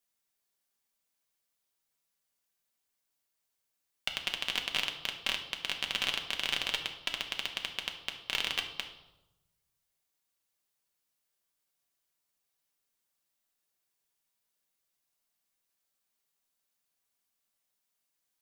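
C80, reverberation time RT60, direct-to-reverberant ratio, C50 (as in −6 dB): 11.5 dB, 0.95 s, 2.5 dB, 8.5 dB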